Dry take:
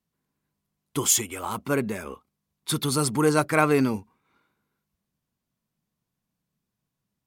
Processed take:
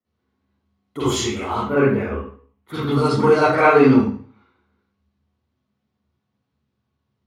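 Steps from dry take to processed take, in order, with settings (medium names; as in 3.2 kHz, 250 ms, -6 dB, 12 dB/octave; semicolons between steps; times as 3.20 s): 1.61–2.98 s: high-order bell 5.8 kHz -12 dB; reverberation RT60 0.45 s, pre-delay 42 ms, DRR -11 dB; trim -16 dB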